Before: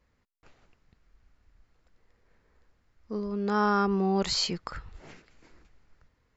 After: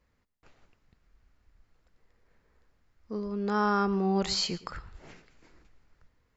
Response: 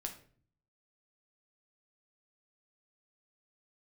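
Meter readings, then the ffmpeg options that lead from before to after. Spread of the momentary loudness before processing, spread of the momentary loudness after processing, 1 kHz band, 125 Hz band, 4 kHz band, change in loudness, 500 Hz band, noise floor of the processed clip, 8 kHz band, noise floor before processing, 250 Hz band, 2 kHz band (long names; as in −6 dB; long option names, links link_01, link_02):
14 LU, 14 LU, −1.5 dB, −1.0 dB, −1.5 dB, −1.5 dB, −1.5 dB, −73 dBFS, can't be measured, −72 dBFS, −1.0 dB, −1.5 dB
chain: -filter_complex "[0:a]asplit=2[link_01][link_02];[1:a]atrim=start_sample=2205,adelay=114[link_03];[link_02][link_03]afir=irnorm=-1:irlink=0,volume=-16.5dB[link_04];[link_01][link_04]amix=inputs=2:normalize=0,volume=-1.5dB"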